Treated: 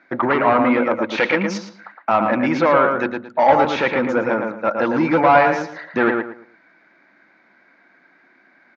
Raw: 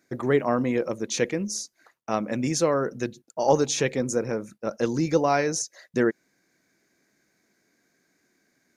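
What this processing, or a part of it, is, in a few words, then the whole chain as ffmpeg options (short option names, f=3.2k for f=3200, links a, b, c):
overdrive pedal into a guitar cabinet: -filter_complex "[0:a]asplit=2[a][b];[b]highpass=f=720:p=1,volume=23dB,asoftclip=type=tanh:threshold=-5.5dB[c];[a][c]amix=inputs=2:normalize=0,lowpass=f=1.2k:p=1,volume=-6dB,highpass=110,equalizer=f=140:t=q:w=4:g=-4,equalizer=f=430:t=q:w=4:g=-10,equalizer=f=900:t=q:w=4:g=6,equalizer=f=1.4k:t=q:w=4:g=6,equalizer=f=2.2k:t=q:w=4:g=4,lowpass=f=3.9k:w=0.5412,lowpass=f=3.9k:w=1.3066,asettb=1/sr,asplit=3[d][e][f];[d]atrim=end=1.184[g];[e]atrim=start=1.18:end=1.58,asetpts=PTS-STARTPTS,afade=t=in:d=0.004:c=qsin,afade=t=out:st=0.396:d=0.004:c=qsin,highshelf=f=2.6k:g=11.5[h];[f]atrim=start=1.576[i];[g][h]acrossfade=d=0.004:c1=hsin:c2=qsin[j];[j][i]acrossfade=d=0.004:c1=qsin:c2=hsin,asplit=2[k][l];[l]adelay=113,lowpass=f=2.2k:p=1,volume=-4dB,asplit=2[m][n];[n]adelay=113,lowpass=f=2.2k:p=1,volume=0.28,asplit=2[o][p];[p]adelay=113,lowpass=f=2.2k:p=1,volume=0.28,asplit=2[q][r];[r]adelay=113,lowpass=f=2.2k:p=1,volume=0.28[s];[k][m][o][q][s]amix=inputs=5:normalize=0,volume=1dB"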